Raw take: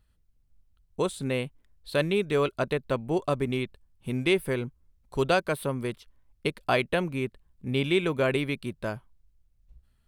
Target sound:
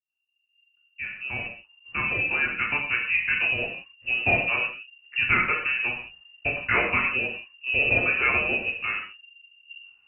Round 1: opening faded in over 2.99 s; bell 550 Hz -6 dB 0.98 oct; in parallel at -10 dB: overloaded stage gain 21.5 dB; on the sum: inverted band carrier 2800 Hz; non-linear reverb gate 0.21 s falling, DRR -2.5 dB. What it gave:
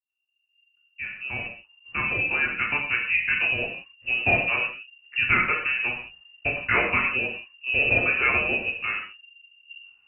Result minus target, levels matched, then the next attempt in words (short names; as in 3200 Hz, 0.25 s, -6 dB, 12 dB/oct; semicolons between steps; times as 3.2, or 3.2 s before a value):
overloaded stage: distortion -7 dB
opening faded in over 2.99 s; bell 550 Hz -6 dB 0.98 oct; in parallel at -10 dB: overloaded stage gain 28 dB; on the sum: inverted band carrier 2800 Hz; non-linear reverb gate 0.21 s falling, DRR -2.5 dB